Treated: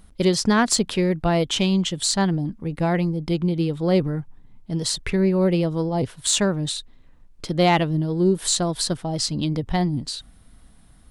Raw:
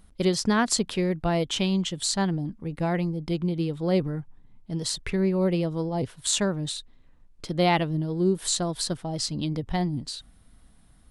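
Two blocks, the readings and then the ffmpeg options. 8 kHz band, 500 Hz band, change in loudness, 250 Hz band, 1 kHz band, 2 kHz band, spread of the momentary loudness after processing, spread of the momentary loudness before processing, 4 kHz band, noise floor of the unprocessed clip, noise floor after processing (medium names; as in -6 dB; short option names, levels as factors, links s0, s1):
+4.5 dB, +4.5 dB, +4.5 dB, +4.5 dB, +4.5 dB, +4.5 dB, 9 LU, 10 LU, +4.5 dB, -56 dBFS, -51 dBFS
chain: -af "aeval=exprs='0.422*(cos(1*acos(clip(val(0)/0.422,-1,1)))-cos(1*PI/2))+0.0211*(cos(5*acos(clip(val(0)/0.422,-1,1)))-cos(5*PI/2))':c=same,volume=1.41"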